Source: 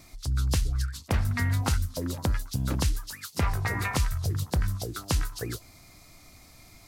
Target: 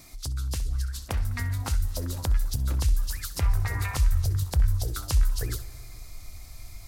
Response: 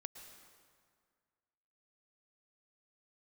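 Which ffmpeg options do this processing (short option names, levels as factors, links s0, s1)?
-filter_complex "[0:a]highshelf=f=5600:g=6.5,asplit=2[s0][s1];[1:a]atrim=start_sample=2205,adelay=64[s2];[s1][s2]afir=irnorm=-1:irlink=0,volume=0.355[s3];[s0][s3]amix=inputs=2:normalize=0,acompressor=threshold=0.0355:ratio=6,asubboost=boost=8.5:cutoff=73"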